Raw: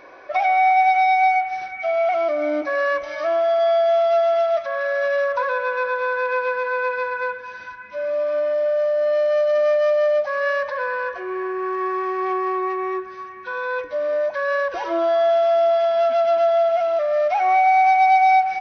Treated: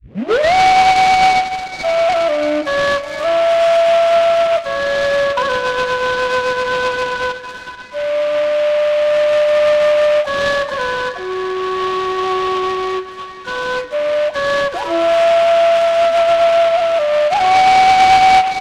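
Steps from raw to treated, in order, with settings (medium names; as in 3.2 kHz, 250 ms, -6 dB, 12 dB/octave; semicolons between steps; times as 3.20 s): tape start-up on the opening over 0.54 s; resampled via 11.025 kHz; delay time shaken by noise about 1.8 kHz, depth 0.047 ms; trim +5.5 dB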